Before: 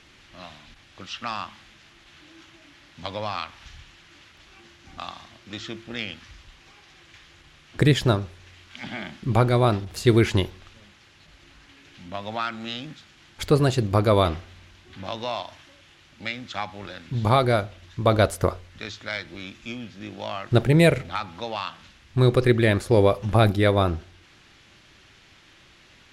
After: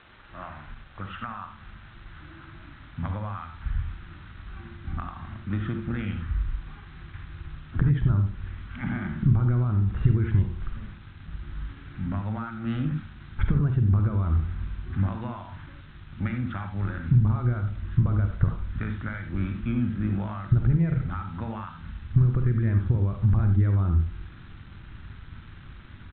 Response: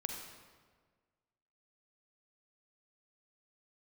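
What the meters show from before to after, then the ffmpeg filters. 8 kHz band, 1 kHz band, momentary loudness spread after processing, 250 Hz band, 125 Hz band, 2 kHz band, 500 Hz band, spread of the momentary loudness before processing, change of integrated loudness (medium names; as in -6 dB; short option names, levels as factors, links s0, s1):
under -35 dB, -10.5 dB, 22 LU, -3.0 dB, +2.0 dB, -9.5 dB, -18.0 dB, 18 LU, -3.0 dB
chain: -filter_complex "[0:a]lowpass=f=1400:t=q:w=2.6,alimiter=limit=0.2:level=0:latency=1,acompressor=threshold=0.0224:ratio=16,aresample=8000,aeval=exprs='val(0)*gte(abs(val(0)),0.00251)':c=same,aresample=44100,asubboost=boost=11:cutoff=160[s0];[1:a]atrim=start_sample=2205,atrim=end_sample=4410[s1];[s0][s1]afir=irnorm=-1:irlink=0,volume=1.26"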